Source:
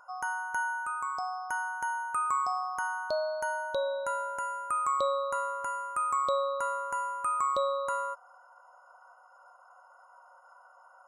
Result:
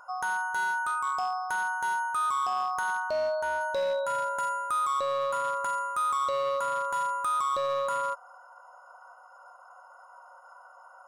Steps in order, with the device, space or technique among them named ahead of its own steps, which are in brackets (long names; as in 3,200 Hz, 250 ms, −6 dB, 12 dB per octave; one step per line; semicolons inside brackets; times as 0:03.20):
limiter into clipper (brickwall limiter −25.5 dBFS, peak gain reduction 7.5 dB; hard clipping −29 dBFS, distortion −20 dB)
0:03.00–0:03.61: high-shelf EQ 4,600 Hz −8 dB
level +5 dB